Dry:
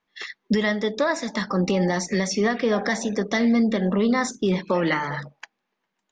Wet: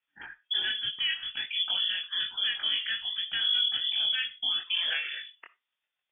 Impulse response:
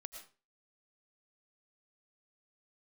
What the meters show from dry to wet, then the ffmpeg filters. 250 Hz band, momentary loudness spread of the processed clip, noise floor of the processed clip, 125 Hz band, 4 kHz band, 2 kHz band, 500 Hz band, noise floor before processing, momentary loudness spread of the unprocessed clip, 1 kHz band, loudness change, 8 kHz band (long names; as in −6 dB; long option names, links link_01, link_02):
below −40 dB, 7 LU, below −85 dBFS, below −30 dB, +10.5 dB, −6.0 dB, below −30 dB, −79 dBFS, 6 LU, −21.0 dB, −4.5 dB, below −40 dB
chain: -filter_complex "[0:a]lowpass=frequency=3100:width_type=q:width=0.5098,lowpass=frequency=3100:width_type=q:width=0.6013,lowpass=frequency=3100:width_type=q:width=0.9,lowpass=frequency=3100:width_type=q:width=2.563,afreqshift=-3600,asplit=2[link_01][link_02];[1:a]atrim=start_sample=2205,asetrate=83790,aresample=44100,lowshelf=frequency=460:gain=-11.5[link_03];[link_02][link_03]afir=irnorm=-1:irlink=0,volume=4.5dB[link_04];[link_01][link_04]amix=inputs=2:normalize=0,flanger=delay=20:depth=4.3:speed=1.2,volume=-8dB"